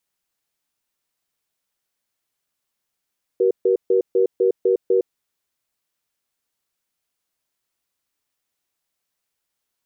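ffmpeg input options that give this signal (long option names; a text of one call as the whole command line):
ffmpeg -f lavfi -i "aevalsrc='0.15*(sin(2*PI*380*t)+sin(2*PI*477*t))*clip(min(mod(t,0.25),0.11-mod(t,0.25))/0.005,0,1)':duration=1.65:sample_rate=44100" out.wav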